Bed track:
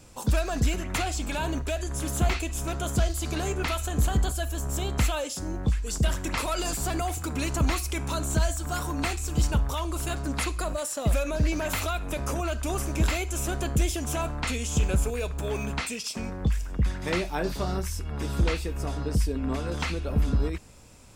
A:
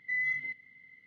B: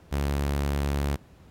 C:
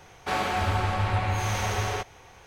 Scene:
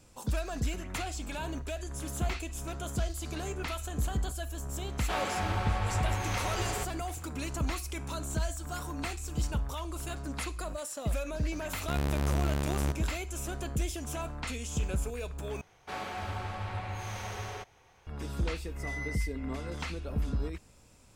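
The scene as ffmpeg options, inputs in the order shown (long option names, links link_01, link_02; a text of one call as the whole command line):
ffmpeg -i bed.wav -i cue0.wav -i cue1.wav -i cue2.wav -filter_complex "[3:a]asplit=2[link_01][link_02];[0:a]volume=-7.5dB[link_03];[1:a]asplit=2[link_04][link_05];[link_05]highpass=frequency=720:poles=1,volume=18dB,asoftclip=type=tanh:threshold=-24.5dB[link_06];[link_04][link_06]amix=inputs=2:normalize=0,lowpass=frequency=1800:poles=1,volume=-6dB[link_07];[link_03]asplit=2[link_08][link_09];[link_08]atrim=end=15.614[link_10];[link_02]atrim=end=2.46,asetpts=PTS-STARTPTS,volume=-11dB[link_11];[link_09]atrim=start=18.066[link_12];[link_01]atrim=end=2.46,asetpts=PTS-STARTPTS,volume=-6dB,afade=type=in:duration=0.004:curve=hsin,afade=type=out:start_time=2.456:duration=0.004:curve=hsin,adelay=4820[link_13];[2:a]atrim=end=1.5,asetpts=PTS-STARTPTS,volume=-3dB,afade=type=in:duration=0.004:curve=hsin,afade=type=out:start_time=1.496:duration=0.004:curve=hsin,adelay=11760[link_14];[link_07]atrim=end=1.06,asetpts=PTS-STARTPTS,volume=-8.5dB,afade=type=in:duration=0.004:curve=hsin,afade=type=out:start_time=1.056:duration=0.004:curve=hsin,adelay=18750[link_15];[link_10][link_11]acrossfade=duration=0.004:curve1=hsin:curve2=hsin[link_16];[link_16][link_12]acrossfade=duration=0.004:curve1=hsin:curve2=hsin[link_17];[link_17][link_13][link_14][link_15]amix=inputs=4:normalize=0" out.wav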